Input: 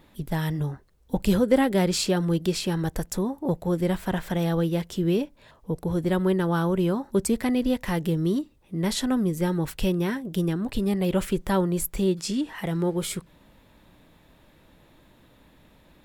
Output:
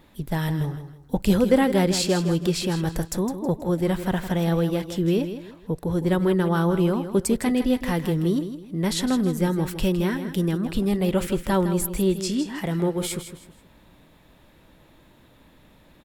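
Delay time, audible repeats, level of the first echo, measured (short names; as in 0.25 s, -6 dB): 0.16 s, 3, -10.5 dB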